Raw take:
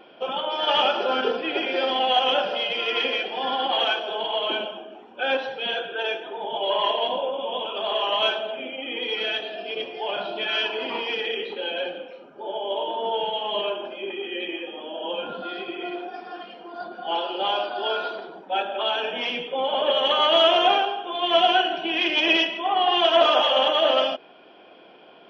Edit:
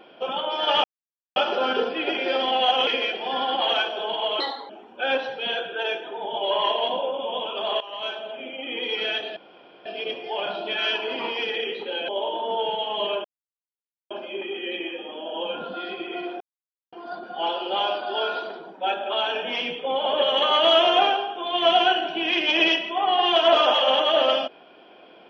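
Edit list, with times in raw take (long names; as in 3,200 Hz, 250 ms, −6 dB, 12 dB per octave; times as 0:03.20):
0:00.84: splice in silence 0.52 s
0:02.35–0:02.98: remove
0:04.51–0:04.89: play speed 129%
0:08.00–0:08.92: fade in, from −17 dB
0:09.56: splice in room tone 0.49 s
0:11.79–0:12.63: remove
0:13.79: splice in silence 0.86 s
0:16.09–0:16.61: silence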